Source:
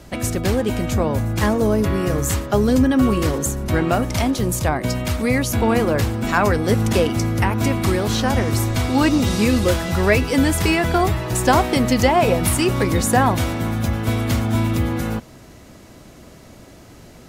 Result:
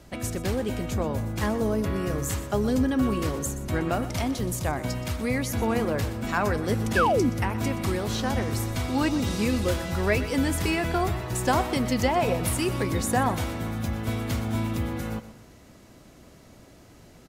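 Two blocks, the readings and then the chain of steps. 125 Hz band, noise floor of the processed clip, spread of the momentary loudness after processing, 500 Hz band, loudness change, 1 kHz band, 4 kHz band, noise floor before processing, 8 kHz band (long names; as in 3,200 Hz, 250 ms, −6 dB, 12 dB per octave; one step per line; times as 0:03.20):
−8.0 dB, −51 dBFS, 6 LU, −7.5 dB, −7.5 dB, −7.0 dB, −8.0 dB, −44 dBFS, −8.0 dB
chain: repeating echo 123 ms, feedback 40%, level −14.5 dB
sound drawn into the spectrogram fall, 0:06.96–0:07.30, 210–1,800 Hz −14 dBFS
level −8 dB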